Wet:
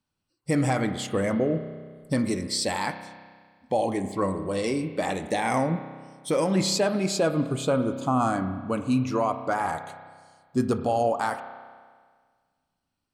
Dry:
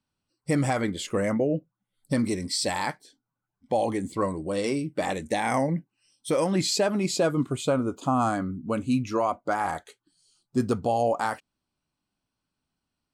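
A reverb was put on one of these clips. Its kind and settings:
spring reverb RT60 1.7 s, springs 31 ms, chirp 30 ms, DRR 9 dB

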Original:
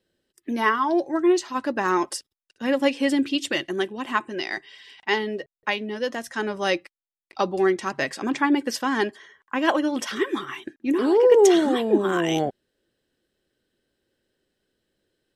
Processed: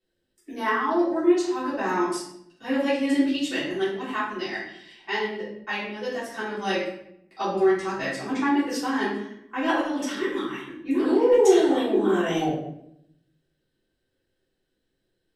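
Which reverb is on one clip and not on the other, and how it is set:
rectangular room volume 170 cubic metres, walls mixed, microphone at 3.4 metres
level −13.5 dB

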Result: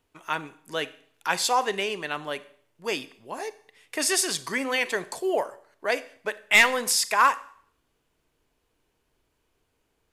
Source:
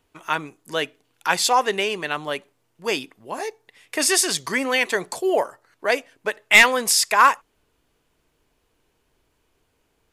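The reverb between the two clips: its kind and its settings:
four-comb reverb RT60 0.58 s, combs from 30 ms, DRR 15.5 dB
level −5 dB

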